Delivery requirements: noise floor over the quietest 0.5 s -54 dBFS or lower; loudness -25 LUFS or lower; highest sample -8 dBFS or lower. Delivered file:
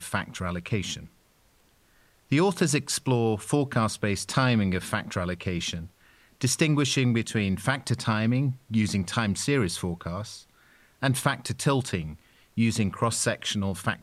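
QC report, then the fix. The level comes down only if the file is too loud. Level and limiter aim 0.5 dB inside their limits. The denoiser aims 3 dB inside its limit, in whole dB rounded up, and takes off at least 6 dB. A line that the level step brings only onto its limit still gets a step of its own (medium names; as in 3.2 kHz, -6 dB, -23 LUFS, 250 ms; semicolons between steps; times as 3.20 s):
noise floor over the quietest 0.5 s -63 dBFS: pass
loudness -27.0 LUFS: pass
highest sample -9.0 dBFS: pass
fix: none needed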